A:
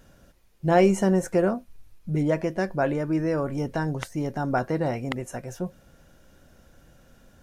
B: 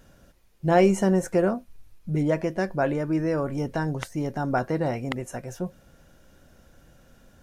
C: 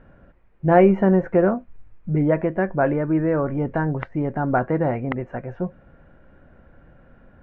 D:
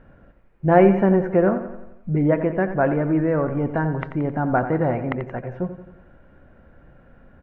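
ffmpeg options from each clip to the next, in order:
-af anull
-af "lowpass=f=2.1k:w=0.5412,lowpass=f=2.1k:w=1.3066,volume=4.5dB"
-af "aecho=1:1:88|176|264|352|440|528:0.282|0.149|0.0792|0.042|0.0222|0.0118"

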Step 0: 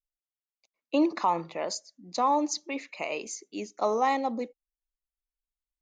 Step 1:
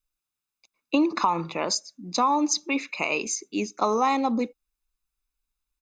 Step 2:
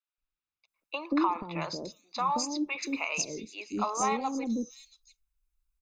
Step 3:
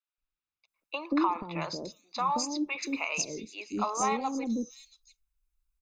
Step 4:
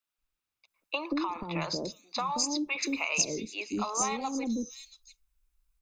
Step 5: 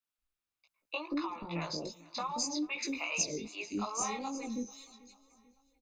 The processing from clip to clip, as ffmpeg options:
-af "aecho=1:1:0.8:0.5,acompressor=threshold=-26dB:ratio=6,volume=7.5dB"
-filter_complex "[0:a]asubboost=boost=3:cutoff=160,flanger=delay=0.6:depth=3:regen=-83:speed=1.6:shape=sinusoidal,acrossover=split=540|4500[a][b][c];[a]adelay=180[d];[c]adelay=680[e];[d][b][e]amix=inputs=3:normalize=0"
-af anull
-filter_complex "[0:a]acrossover=split=120|3000[a][b][c];[b]acompressor=threshold=-35dB:ratio=6[d];[a][d][c]amix=inputs=3:normalize=0,volume=5dB"
-af "flanger=delay=17:depth=3:speed=2.5,aecho=1:1:441|882|1323:0.075|0.0375|0.0187,volume=-2dB"

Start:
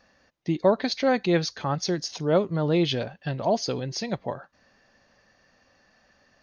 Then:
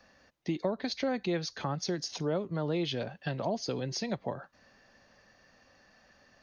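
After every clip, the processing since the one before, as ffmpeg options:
-filter_complex "[0:a]acrossover=split=110|360[a][b][c];[a]acompressor=threshold=-55dB:ratio=4[d];[b]acompressor=threshold=-35dB:ratio=4[e];[c]acompressor=threshold=-34dB:ratio=4[f];[d][e][f]amix=inputs=3:normalize=0"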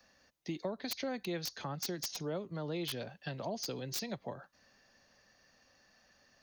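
-filter_complex "[0:a]highshelf=f=4.5k:g=11.5,acrossover=split=130|1100[a][b][c];[c]aeval=exprs='(mod(14.1*val(0)+1,2)-1)/14.1':c=same[d];[a][b][d]amix=inputs=3:normalize=0,volume=-7dB"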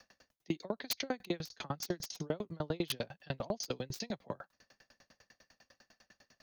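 -af "aeval=exprs='val(0)*pow(10,-35*if(lt(mod(10*n/s,1),2*abs(10)/1000),1-mod(10*n/s,1)/(2*abs(10)/1000),(mod(10*n/s,1)-2*abs(10)/1000)/(1-2*abs(10)/1000))/20)':c=same,volume=9.5dB"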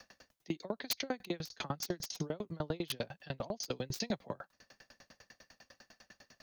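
-af "alimiter=level_in=4dB:limit=-24dB:level=0:latency=1:release=454,volume=-4dB,volume=5dB"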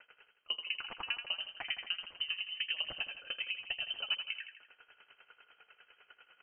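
-af "aecho=1:1:82|164|246|328|410|492:0.398|0.195|0.0956|0.0468|0.023|0.0112,lowpass=f=2.7k:t=q:w=0.5098,lowpass=f=2.7k:t=q:w=0.6013,lowpass=f=2.7k:t=q:w=0.9,lowpass=f=2.7k:t=q:w=2.563,afreqshift=-3200"

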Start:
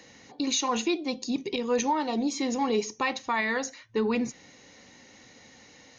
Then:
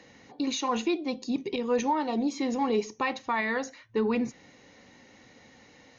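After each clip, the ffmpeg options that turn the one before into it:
-af "lowpass=f=2.7k:p=1"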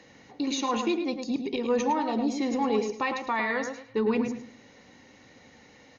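-filter_complex "[0:a]asplit=2[a][b];[b]adelay=107,lowpass=f=2.9k:p=1,volume=-5.5dB,asplit=2[c][d];[d]adelay=107,lowpass=f=2.9k:p=1,volume=0.27,asplit=2[e][f];[f]adelay=107,lowpass=f=2.9k:p=1,volume=0.27,asplit=2[g][h];[h]adelay=107,lowpass=f=2.9k:p=1,volume=0.27[i];[a][c][e][g][i]amix=inputs=5:normalize=0"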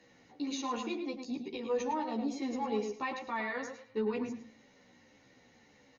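-filter_complex "[0:a]asplit=2[a][b];[b]adelay=12,afreqshift=-1.7[c];[a][c]amix=inputs=2:normalize=1,volume=-5.5dB"

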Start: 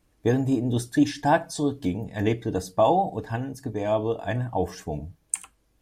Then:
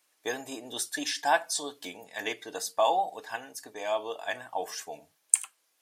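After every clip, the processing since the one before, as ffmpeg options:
-af "highpass=710,highshelf=f=2k:g=8.5,volume=-2.5dB"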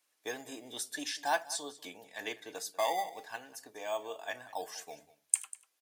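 -filter_complex "[0:a]acrossover=split=410|780|5500[a][b][c][d];[b]acrusher=samples=11:mix=1:aa=0.000001:lfo=1:lforange=11:lforate=0.43[e];[a][e][c][d]amix=inputs=4:normalize=0,aecho=1:1:194:0.119,volume=-6dB"

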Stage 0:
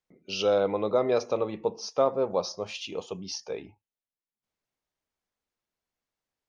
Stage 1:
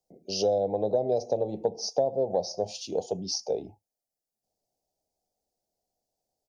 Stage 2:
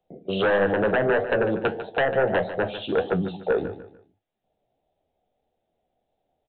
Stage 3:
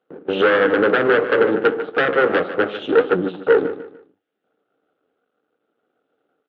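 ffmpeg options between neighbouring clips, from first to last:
-filter_complex "[0:a]firequalizer=gain_entry='entry(290,0);entry(740,10);entry(1200,-30);entry(4700,2)':delay=0.05:min_phase=1,acrossover=split=160[a][b];[b]acompressor=threshold=-27dB:ratio=5[c];[a][c]amix=inputs=2:normalize=0,volume=3.5dB"
-af "aresample=8000,aeval=exprs='0.237*sin(PI/2*3.55*val(0)/0.237)':c=same,aresample=44100,flanger=delay=10:depth=6.7:regen=65:speed=1.6:shape=triangular,aecho=1:1:148|296|444:0.237|0.0735|0.0228"
-af "crystalizer=i=1.5:c=0,aeval=exprs='max(val(0),0)':c=same,highpass=240,equalizer=f=290:t=q:w=4:g=8,equalizer=f=450:t=q:w=4:g=8,equalizer=f=660:t=q:w=4:g=-7,equalizer=f=980:t=q:w=4:g=-9,equalizer=f=1.4k:t=q:w=4:g=8,equalizer=f=2.3k:t=q:w=4:g=-4,lowpass=f=3.1k:w=0.5412,lowpass=f=3.1k:w=1.3066,volume=9dB"

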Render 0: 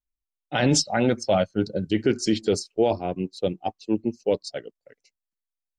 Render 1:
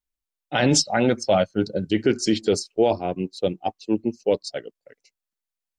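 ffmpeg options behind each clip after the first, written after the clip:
-af "lowshelf=f=170:g=-4,volume=2.5dB"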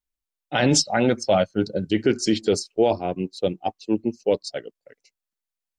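-af anull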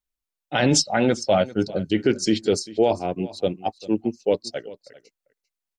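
-af "aecho=1:1:396:0.112"

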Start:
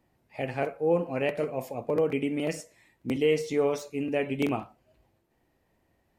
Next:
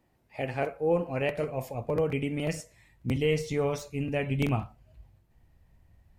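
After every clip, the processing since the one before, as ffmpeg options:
-af "asubboost=boost=10:cutoff=110"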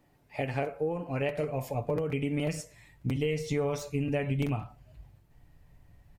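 -af "acompressor=threshold=-32dB:ratio=6,aecho=1:1:6.9:0.38,volume=3.5dB"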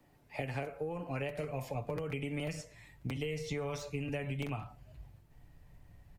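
-filter_complex "[0:a]acrossover=split=120|540|1200|5800[a][b][c][d][e];[a]acompressor=threshold=-44dB:ratio=4[f];[b]acompressor=threshold=-41dB:ratio=4[g];[c]acompressor=threshold=-44dB:ratio=4[h];[d]acompressor=threshold=-43dB:ratio=4[i];[e]acompressor=threshold=-58dB:ratio=4[j];[f][g][h][i][j]amix=inputs=5:normalize=0"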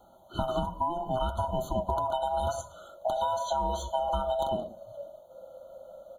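-af "afftfilt=real='real(if(lt(b,1008),b+24*(1-2*mod(floor(b/24),2)),b),0)':imag='imag(if(lt(b,1008),b+24*(1-2*mod(floor(b/24),2)),b),0)':win_size=2048:overlap=0.75,afftfilt=real='re*eq(mod(floor(b*sr/1024/1500),2),0)':imag='im*eq(mod(floor(b*sr/1024/1500),2),0)':win_size=1024:overlap=0.75,volume=8.5dB"

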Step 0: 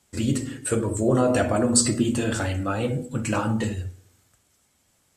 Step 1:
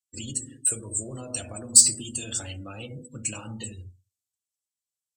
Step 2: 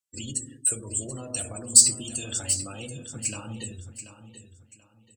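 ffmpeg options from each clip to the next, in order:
-filter_complex "[0:a]afftdn=nr=32:nf=-36,aexciter=amount=5.5:drive=6.6:freq=2.6k,acrossover=split=130|3000[a][b][c];[b]acompressor=threshold=-27dB:ratio=6[d];[a][d][c]amix=inputs=3:normalize=0,volume=-11dB"
-af "aecho=1:1:734|1468|2202:0.266|0.0745|0.0209"

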